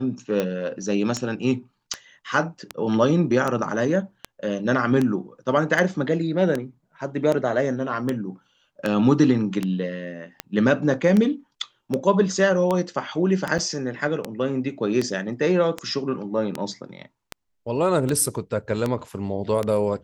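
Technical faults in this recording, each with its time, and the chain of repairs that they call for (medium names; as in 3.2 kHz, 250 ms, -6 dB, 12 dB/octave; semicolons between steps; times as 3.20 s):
tick 78 rpm -11 dBFS
13.58–13.59 s: dropout 6.4 ms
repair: de-click; interpolate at 13.58 s, 6.4 ms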